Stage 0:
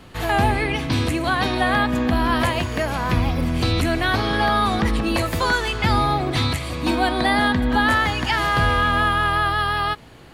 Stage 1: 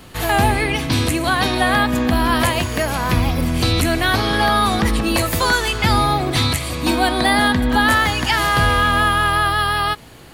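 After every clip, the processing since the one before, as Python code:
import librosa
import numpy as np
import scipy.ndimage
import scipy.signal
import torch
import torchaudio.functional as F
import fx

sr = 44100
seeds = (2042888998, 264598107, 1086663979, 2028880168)

y = fx.high_shelf(x, sr, hz=6500.0, db=11.5)
y = y * librosa.db_to_amplitude(2.5)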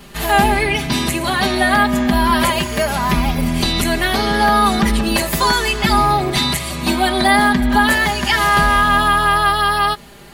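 y = x + 0.99 * np.pad(x, (int(5.0 * sr / 1000.0), 0))[:len(x)]
y = y * librosa.db_to_amplitude(-1.0)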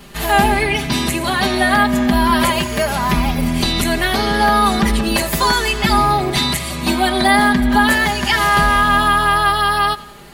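y = fx.echo_feedback(x, sr, ms=89, feedback_pct=54, wet_db=-20.5)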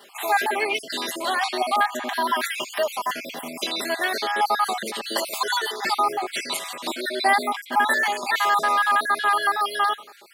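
y = fx.spec_dropout(x, sr, seeds[0], share_pct=45)
y = fx.ladder_highpass(y, sr, hz=340.0, resonance_pct=20)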